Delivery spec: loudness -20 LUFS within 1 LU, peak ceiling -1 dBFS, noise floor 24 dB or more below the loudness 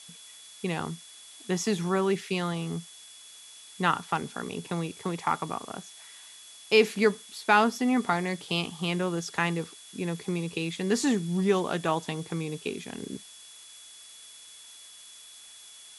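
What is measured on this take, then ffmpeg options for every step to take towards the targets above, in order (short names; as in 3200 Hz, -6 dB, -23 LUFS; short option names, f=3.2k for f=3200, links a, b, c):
steady tone 3400 Hz; tone level -51 dBFS; noise floor -49 dBFS; noise floor target -53 dBFS; loudness -28.5 LUFS; peak -7.5 dBFS; loudness target -20.0 LUFS
-> -af "bandreject=f=3.4k:w=30"
-af "afftdn=nr=6:nf=-49"
-af "volume=8.5dB,alimiter=limit=-1dB:level=0:latency=1"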